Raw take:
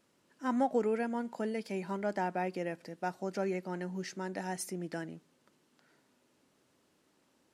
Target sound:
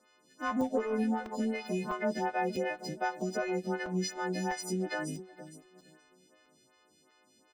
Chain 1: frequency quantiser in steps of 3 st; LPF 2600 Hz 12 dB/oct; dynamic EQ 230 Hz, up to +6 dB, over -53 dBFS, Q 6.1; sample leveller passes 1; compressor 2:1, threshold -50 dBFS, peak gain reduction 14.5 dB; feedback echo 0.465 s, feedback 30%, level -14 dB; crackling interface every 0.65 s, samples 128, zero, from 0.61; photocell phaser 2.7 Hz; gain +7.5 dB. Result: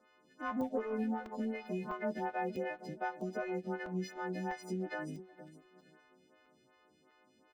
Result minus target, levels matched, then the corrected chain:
8000 Hz band -11.0 dB; compressor: peak gain reduction +5 dB
frequency quantiser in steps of 3 st; LPF 5900 Hz 12 dB/oct; dynamic EQ 230 Hz, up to +6 dB, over -53 dBFS, Q 6.1; sample leveller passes 1; compressor 2:1, threshold -40 dBFS, peak gain reduction 9.5 dB; feedback echo 0.465 s, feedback 30%, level -14 dB; crackling interface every 0.65 s, samples 128, zero, from 0.61; photocell phaser 2.7 Hz; gain +7.5 dB

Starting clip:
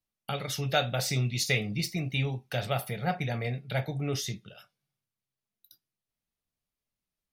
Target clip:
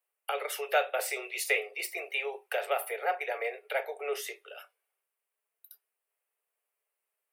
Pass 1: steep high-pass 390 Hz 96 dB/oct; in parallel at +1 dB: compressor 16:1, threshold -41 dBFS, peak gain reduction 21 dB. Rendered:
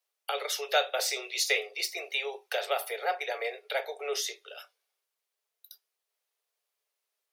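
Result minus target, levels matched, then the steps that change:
4000 Hz band +7.0 dB
add after steep high-pass: band shelf 4800 Hz -13 dB 1.2 oct

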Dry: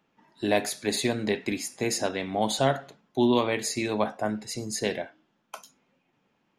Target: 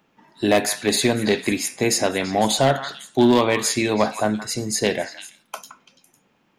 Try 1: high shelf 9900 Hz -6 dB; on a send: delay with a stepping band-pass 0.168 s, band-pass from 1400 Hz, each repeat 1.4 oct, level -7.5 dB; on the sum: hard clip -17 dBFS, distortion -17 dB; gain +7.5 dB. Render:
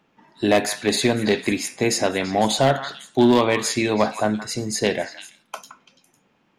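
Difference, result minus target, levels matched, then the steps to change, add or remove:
8000 Hz band -2.5 dB
change: high shelf 9900 Hz +3.5 dB

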